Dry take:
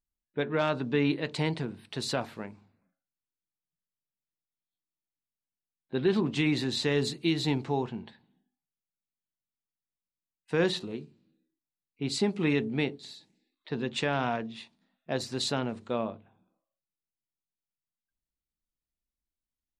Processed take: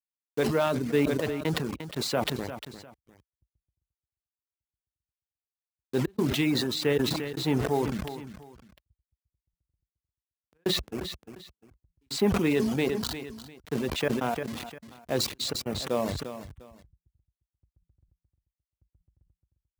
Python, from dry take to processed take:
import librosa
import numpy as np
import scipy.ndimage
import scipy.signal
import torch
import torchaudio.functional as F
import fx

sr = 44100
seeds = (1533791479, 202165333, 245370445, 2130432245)

p1 = fx.delta_hold(x, sr, step_db=-36.5)
p2 = fx.step_gate(p1, sr, bpm=114, pattern='x.xxxxxx.', floor_db=-60.0, edge_ms=4.5)
p3 = fx.dereverb_blind(p2, sr, rt60_s=0.76)
p4 = scipy.signal.sosfilt(scipy.signal.butter(4, 57.0, 'highpass', fs=sr, output='sos'), p3)
p5 = p4 + fx.echo_feedback(p4, sr, ms=351, feedback_pct=33, wet_db=-23.0, dry=0)
p6 = fx.dynamic_eq(p5, sr, hz=470.0, q=1.1, threshold_db=-42.0, ratio=4.0, max_db=4)
y = fx.sustainer(p6, sr, db_per_s=34.0)